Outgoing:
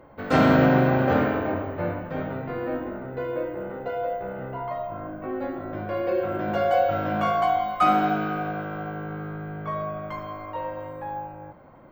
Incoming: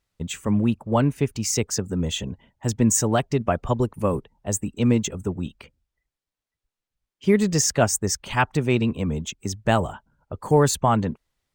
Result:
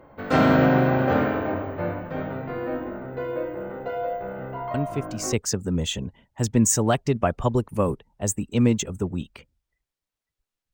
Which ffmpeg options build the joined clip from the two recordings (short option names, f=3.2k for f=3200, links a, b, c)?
-filter_complex "[1:a]asplit=2[a][b];[0:a]apad=whole_dur=10.73,atrim=end=10.73,atrim=end=5.332[c];[b]atrim=start=1.578:end=6.98[d];[a]atrim=start=0.99:end=1.58,asetpts=PTS-STARTPTS,volume=-6dB,afade=t=in:d=0.004:c=hsin,afade=t=out:st=0.586:d=0.004:c=hsin,adelay=4740[e];[c][d]acrossfade=d=0.004:c1=hsin:c2=hsin[f];[f][e]amix=inputs=2:normalize=0"